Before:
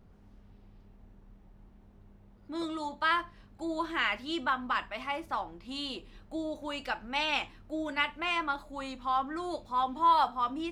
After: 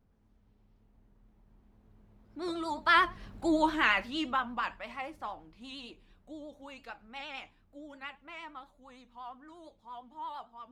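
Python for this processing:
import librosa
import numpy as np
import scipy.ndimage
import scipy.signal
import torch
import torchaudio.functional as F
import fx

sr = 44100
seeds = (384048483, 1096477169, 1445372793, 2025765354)

y = fx.doppler_pass(x, sr, speed_mps=18, closest_m=6.5, pass_at_s=3.37)
y = fx.vibrato(y, sr, rate_hz=8.7, depth_cents=76.0)
y = y * 10.0 ** (8.0 / 20.0)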